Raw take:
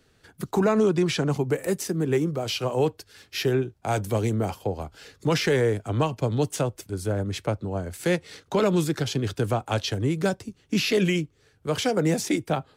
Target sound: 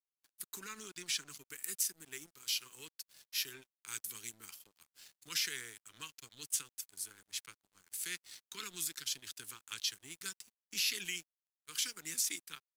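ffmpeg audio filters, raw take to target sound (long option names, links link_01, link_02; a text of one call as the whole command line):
ffmpeg -i in.wav -af "asuperstop=centerf=650:order=4:qfactor=0.75,aderivative,aeval=exprs='sgn(val(0))*max(abs(val(0))-0.0015,0)':channel_layout=same" out.wav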